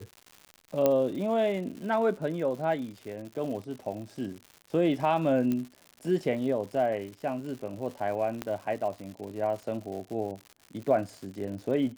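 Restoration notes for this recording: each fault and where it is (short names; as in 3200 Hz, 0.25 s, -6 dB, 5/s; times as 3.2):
crackle 180/s -38 dBFS
0.86 pop -11 dBFS
5.52 pop -18 dBFS
8.42 pop -17 dBFS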